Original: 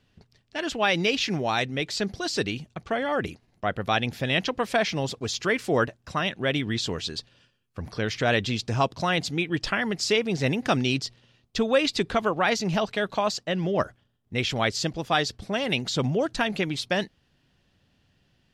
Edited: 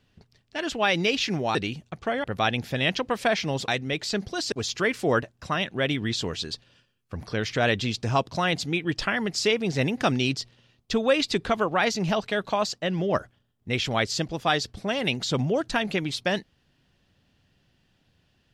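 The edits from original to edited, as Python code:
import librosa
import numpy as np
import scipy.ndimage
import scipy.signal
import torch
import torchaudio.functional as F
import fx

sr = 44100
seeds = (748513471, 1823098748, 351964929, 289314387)

y = fx.edit(x, sr, fx.move(start_s=1.55, length_s=0.84, to_s=5.17),
    fx.cut(start_s=3.08, length_s=0.65), tone=tone)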